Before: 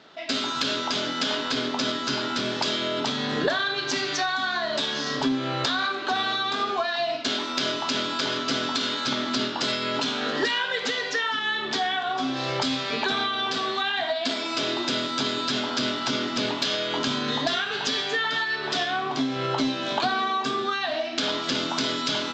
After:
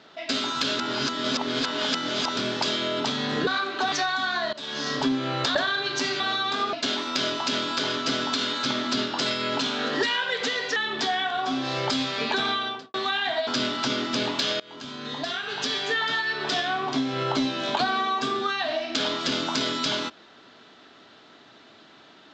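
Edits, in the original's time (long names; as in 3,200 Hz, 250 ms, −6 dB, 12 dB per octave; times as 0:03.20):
0:00.79–0:02.37: reverse
0:03.47–0:04.12: swap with 0:05.75–0:06.20
0:04.73–0:05.05: fade in, from −22.5 dB
0:06.73–0:07.15: remove
0:11.18–0:11.48: remove
0:13.31–0:13.66: fade out and dull
0:14.19–0:15.70: remove
0:16.83–0:18.15: fade in, from −23 dB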